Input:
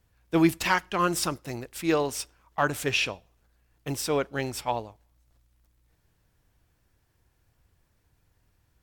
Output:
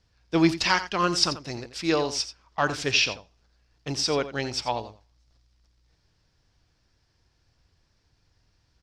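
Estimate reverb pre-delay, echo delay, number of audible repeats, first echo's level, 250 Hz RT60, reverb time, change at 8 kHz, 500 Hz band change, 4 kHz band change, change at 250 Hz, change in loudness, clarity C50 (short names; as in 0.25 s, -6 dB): none, 86 ms, 1, -13.0 dB, none, none, +1.5 dB, +0.5 dB, +7.5 dB, +0.5 dB, +2.0 dB, none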